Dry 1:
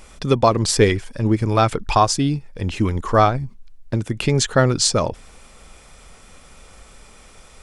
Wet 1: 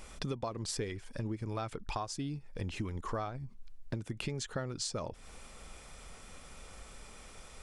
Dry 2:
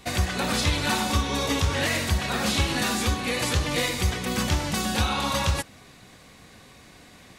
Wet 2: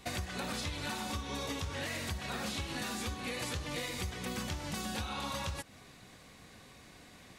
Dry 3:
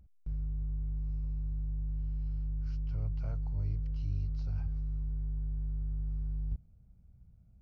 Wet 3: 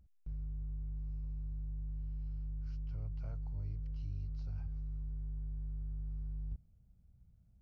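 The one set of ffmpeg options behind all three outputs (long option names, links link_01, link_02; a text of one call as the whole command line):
ffmpeg -i in.wav -af "acompressor=threshold=-29dB:ratio=8,volume=-5.5dB" out.wav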